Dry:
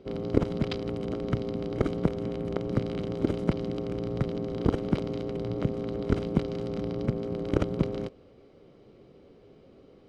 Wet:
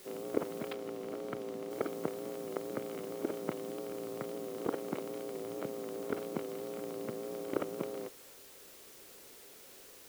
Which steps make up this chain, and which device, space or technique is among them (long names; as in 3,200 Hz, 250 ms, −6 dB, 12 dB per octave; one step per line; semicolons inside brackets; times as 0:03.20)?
wax cylinder (band-pass filter 390–2,300 Hz; tape wow and flutter; white noise bed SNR 15 dB)
0:00.73–0:01.71: high-shelf EQ 6,000 Hz −7.5 dB
level −4 dB